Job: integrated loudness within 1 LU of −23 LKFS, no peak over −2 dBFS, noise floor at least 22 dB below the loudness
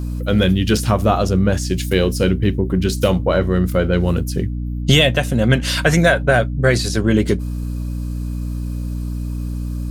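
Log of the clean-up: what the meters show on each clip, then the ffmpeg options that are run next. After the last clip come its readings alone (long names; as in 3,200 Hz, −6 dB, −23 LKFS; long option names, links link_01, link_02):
mains hum 60 Hz; hum harmonics up to 300 Hz; level of the hum −21 dBFS; integrated loudness −18.0 LKFS; sample peak −1.0 dBFS; target loudness −23.0 LKFS
→ -af "bandreject=frequency=60:width_type=h:width=6,bandreject=frequency=120:width_type=h:width=6,bandreject=frequency=180:width_type=h:width=6,bandreject=frequency=240:width_type=h:width=6,bandreject=frequency=300:width_type=h:width=6"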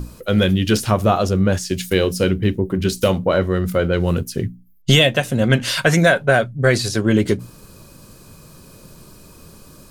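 mains hum none found; integrated loudness −18.0 LKFS; sample peak −1.5 dBFS; target loudness −23.0 LKFS
→ -af "volume=-5dB"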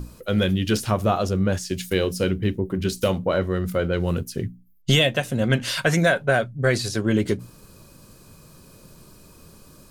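integrated loudness −23.0 LKFS; sample peak −6.5 dBFS; background noise floor −50 dBFS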